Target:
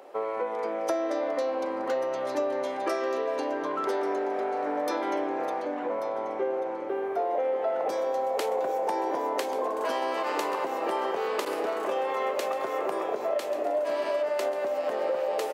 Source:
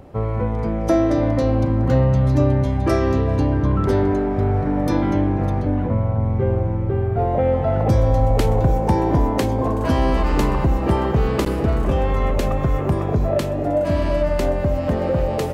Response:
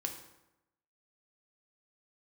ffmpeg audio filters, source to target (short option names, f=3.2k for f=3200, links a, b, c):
-af "highpass=f=420:w=0.5412,highpass=f=420:w=1.3066,acompressor=threshold=-26dB:ratio=4,aecho=1:1:1138|2276|3414|4552:0.2|0.0898|0.0404|0.0182"